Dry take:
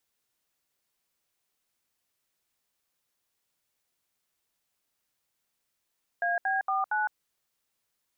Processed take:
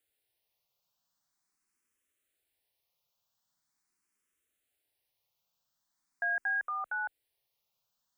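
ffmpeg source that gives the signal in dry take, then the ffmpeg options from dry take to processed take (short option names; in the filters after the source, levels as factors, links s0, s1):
-f lavfi -i "aevalsrc='0.0422*clip(min(mod(t,0.231),0.16-mod(t,0.231))/0.002,0,1)*(eq(floor(t/0.231),0)*(sin(2*PI*697*mod(t,0.231))+sin(2*PI*1633*mod(t,0.231)))+eq(floor(t/0.231),1)*(sin(2*PI*770*mod(t,0.231))+sin(2*PI*1633*mod(t,0.231)))+eq(floor(t/0.231),2)*(sin(2*PI*770*mod(t,0.231))+sin(2*PI*1209*mod(t,0.231)))+eq(floor(t/0.231),3)*(sin(2*PI*852*mod(t,0.231))+sin(2*PI*1477*mod(t,0.231))))':d=0.924:s=44100"
-filter_complex "[0:a]asplit=2[s0][s1];[s1]afreqshift=0.43[s2];[s0][s2]amix=inputs=2:normalize=1"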